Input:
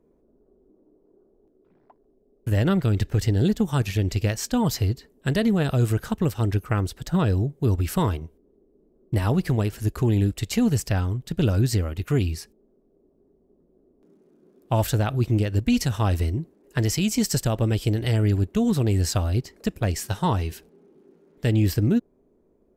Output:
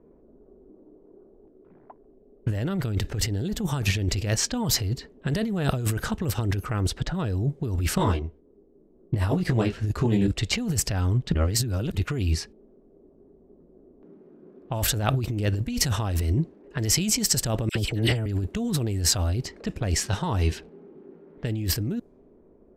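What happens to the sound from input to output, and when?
0:07.95–0:10.28: micro pitch shift up and down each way 27 cents
0:11.34–0:11.95: reverse
0:17.69–0:18.26: all-pass dispersion lows, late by 63 ms, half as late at 1,400 Hz
whole clip: low-pass that shuts in the quiet parts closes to 1,900 Hz, open at −18.5 dBFS; compressor whose output falls as the input rises −27 dBFS, ratio −1; level +2.5 dB

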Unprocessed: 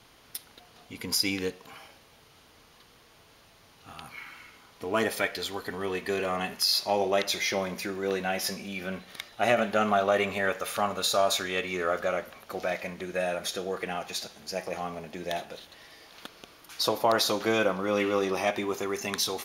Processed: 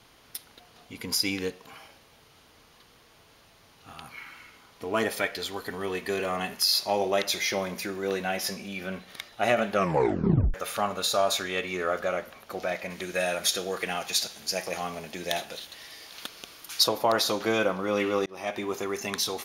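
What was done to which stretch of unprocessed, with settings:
0:05.56–0:08.37: high-shelf EQ 6,900 Hz +4 dB
0:09.73: tape stop 0.81 s
0:12.90–0:16.84: high-shelf EQ 2,200 Hz +10 dB
0:18.26–0:18.83: fade in equal-power

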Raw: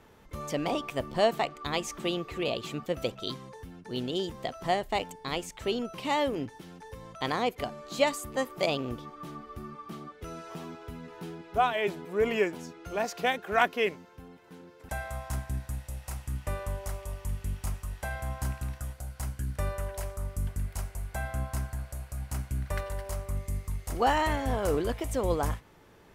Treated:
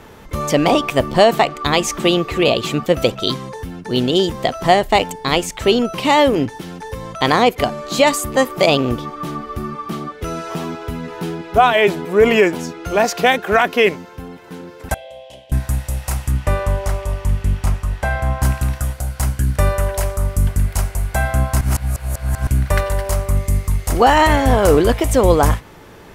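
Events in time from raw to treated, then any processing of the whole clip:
0:14.94–0:15.52: pair of resonant band-passes 1,300 Hz, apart 2.5 octaves
0:16.30–0:18.42: low-pass filter 5,400 Hz → 2,600 Hz 6 dB per octave
0:21.61–0:22.47: reverse
whole clip: boost into a limiter +17 dB; level −1 dB

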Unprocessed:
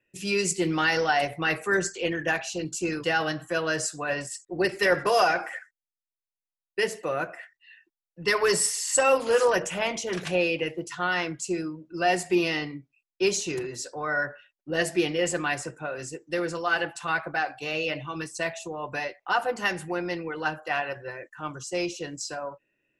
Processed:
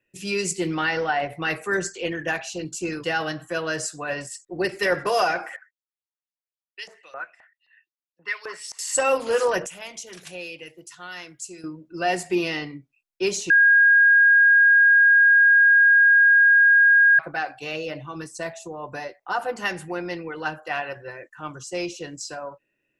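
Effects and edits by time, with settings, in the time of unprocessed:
0:00.74–0:01.29: low-pass filter 4,400 Hz → 2,300 Hz
0:05.56–0:08.79: auto-filter band-pass saw up 3.8 Hz 810–5,700 Hz
0:09.66–0:11.64: first-order pre-emphasis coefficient 0.8
0:13.50–0:17.19: beep over 1,630 Hz −11.5 dBFS
0:17.76–0:19.41: parametric band 2,600 Hz −7.5 dB 1.1 octaves

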